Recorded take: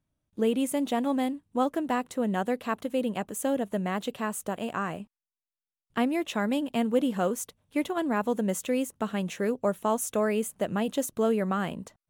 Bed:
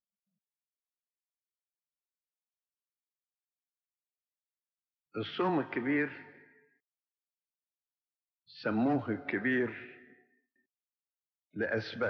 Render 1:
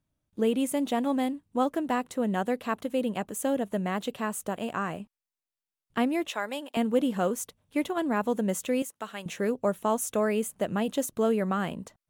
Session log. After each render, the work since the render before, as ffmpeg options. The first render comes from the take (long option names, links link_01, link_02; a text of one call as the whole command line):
ffmpeg -i in.wav -filter_complex "[0:a]asettb=1/sr,asplit=3[link_01][link_02][link_03];[link_01]atrim=end=6.294[link_04];[link_02]atrim=start=6.29:end=6.77,asetpts=PTS-STARTPTS,afade=type=in:duration=0.004:curve=qsin,afade=type=out:start_time=0.476:duration=0.004:curve=qsin,highpass=550[link_05];[link_03]atrim=start=6.766[link_06];[link_04][link_05]acrossfade=duration=0.004:curve1=hsin:curve2=qsin[link_07];[link_07][link_06]acrossfade=duration=0.004:curve1=qsin:curve2=hsin,asettb=1/sr,asplit=3[link_08][link_09][link_10];[link_08]atrim=end=8.824[link_11];[link_09]atrim=start=8.82:end=9.26,asetpts=PTS-STARTPTS,afade=type=in:duration=0.004:curve=qsin,afade=type=out:start_time=0.436:duration=0.004:curve=qsin,highpass=frequency=1100:poles=1[link_12];[link_10]atrim=start=9.256[link_13];[link_11][link_12]acrossfade=duration=0.004:curve1=hsin:curve2=qsin[link_14];[link_14][link_13]acrossfade=duration=0.004:curve1=qsin:curve2=hsin" out.wav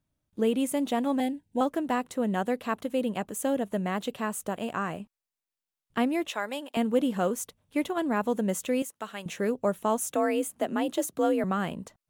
ffmpeg -i in.wav -filter_complex "[0:a]asettb=1/sr,asplit=3[link_01][link_02][link_03];[link_01]atrim=end=1.204[link_04];[link_02]atrim=start=1.2:end=1.61,asetpts=PTS-STARTPTS,afade=type=in:duration=0.004:curve=qsin,afade=type=out:start_time=0.406:duration=0.004:curve=qsin,asuperstop=centerf=1200:order=20:qfactor=2.5[link_05];[link_03]atrim=start=1.606[link_06];[link_04][link_05]acrossfade=duration=0.004:curve1=hsin:curve2=qsin[link_07];[link_07][link_06]acrossfade=duration=0.004:curve1=qsin:curve2=hsin,asettb=1/sr,asplit=3[link_08][link_09][link_10];[link_08]atrim=end=10.004[link_11];[link_09]atrim=start=10:end=11.44,asetpts=PTS-STARTPTS,afade=type=in:duration=0.004:curve=qsin,afade=type=out:start_time=1.436:duration=0.004:curve=qsin,afreqshift=48[link_12];[link_10]atrim=start=11.436[link_13];[link_11][link_12]acrossfade=duration=0.004:curve1=hsin:curve2=qsin[link_14];[link_14][link_13]acrossfade=duration=0.004:curve1=qsin:curve2=hsin" out.wav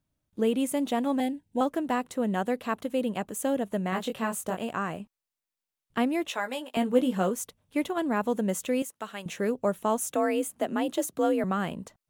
ffmpeg -i in.wav -filter_complex "[0:a]asettb=1/sr,asplit=3[link_01][link_02][link_03];[link_01]atrim=end=3.904[link_04];[link_02]atrim=start=3.9:end=4.63,asetpts=PTS-STARTPTS,afade=type=in:duration=0.004:curve=qsin,afade=type=out:start_time=0.726:duration=0.004:curve=qsin,asplit=2[link_05][link_06];[link_06]adelay=22,volume=-4dB[link_07];[link_05][link_07]amix=inputs=2:normalize=0,atrim=end_sample=32193[link_08];[link_03]atrim=start=4.626[link_09];[link_04][link_08]acrossfade=duration=0.004:curve1=hsin:curve2=qsin[link_10];[link_10][link_09]acrossfade=duration=0.004:curve1=qsin:curve2=hsin,asettb=1/sr,asplit=3[link_11][link_12][link_13];[link_11]atrim=end=6.254[link_14];[link_12]atrim=start=6.25:end=7.3,asetpts=PTS-STARTPTS,afade=type=in:duration=0.004:curve=qsin,afade=type=out:start_time=1.046:duration=0.004:curve=qsin,asplit=2[link_15][link_16];[link_16]adelay=16,volume=-7dB[link_17];[link_15][link_17]amix=inputs=2:normalize=0,atrim=end_sample=46305[link_18];[link_13]atrim=start=7.296[link_19];[link_14][link_18]acrossfade=duration=0.004:curve1=hsin:curve2=qsin[link_20];[link_20][link_19]acrossfade=duration=0.004:curve1=qsin:curve2=hsin" out.wav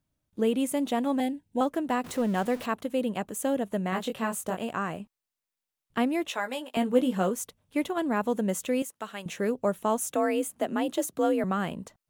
ffmpeg -i in.wav -filter_complex "[0:a]asettb=1/sr,asplit=3[link_01][link_02][link_03];[link_01]atrim=end=2.044[link_04];[link_02]atrim=start=2.04:end=2.66,asetpts=PTS-STARTPTS,afade=type=in:duration=0.004:curve=qsin,afade=type=out:start_time=0.616:duration=0.004:curve=qsin,aeval=exprs='val(0)+0.5*0.0133*sgn(val(0))':channel_layout=same[link_05];[link_03]atrim=start=2.656[link_06];[link_04][link_05]acrossfade=duration=0.004:curve1=hsin:curve2=qsin[link_07];[link_07][link_06]acrossfade=duration=0.004:curve1=qsin:curve2=hsin" out.wav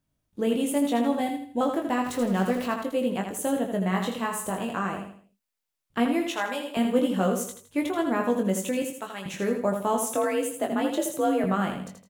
ffmpeg -i in.wav -filter_complex "[0:a]asplit=2[link_01][link_02];[link_02]adelay=21,volume=-5dB[link_03];[link_01][link_03]amix=inputs=2:normalize=0,aecho=1:1:81|162|243|324:0.473|0.166|0.058|0.0203" out.wav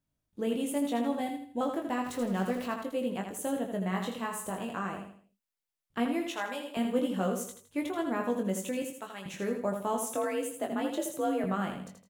ffmpeg -i in.wav -af "volume=-6dB" out.wav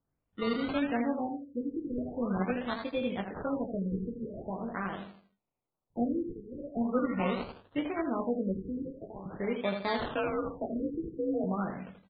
ffmpeg -i in.wav -af "acrusher=samples=21:mix=1:aa=0.000001:lfo=1:lforange=12.6:lforate=0.59,afftfilt=real='re*lt(b*sr/1024,480*pow(4800/480,0.5+0.5*sin(2*PI*0.43*pts/sr)))':imag='im*lt(b*sr/1024,480*pow(4800/480,0.5+0.5*sin(2*PI*0.43*pts/sr)))':win_size=1024:overlap=0.75" out.wav